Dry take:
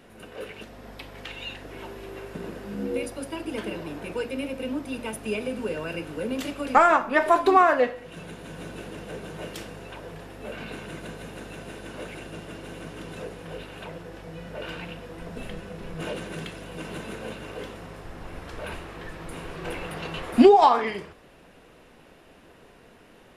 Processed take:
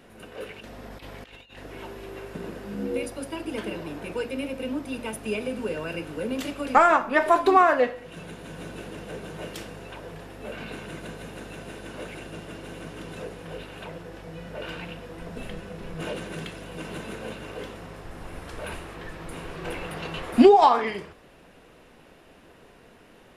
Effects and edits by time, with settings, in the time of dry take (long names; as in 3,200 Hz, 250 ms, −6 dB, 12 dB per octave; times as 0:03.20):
0:00.60–0:01.59: compressor whose output falls as the input rises −43 dBFS, ratio −0.5
0:18.11–0:18.95: parametric band 9,800 Hz +5.5 dB